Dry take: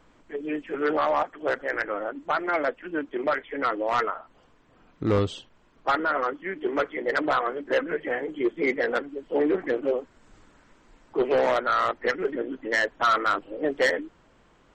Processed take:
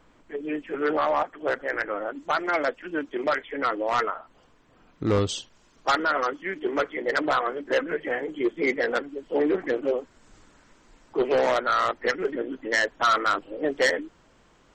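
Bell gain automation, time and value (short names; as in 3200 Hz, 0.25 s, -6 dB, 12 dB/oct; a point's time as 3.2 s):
bell 6200 Hz 1.4 oct
0 dB
from 2.09 s +11 dB
from 3.51 s +4 dB
from 5.29 s +15 dB
from 6.59 s +6 dB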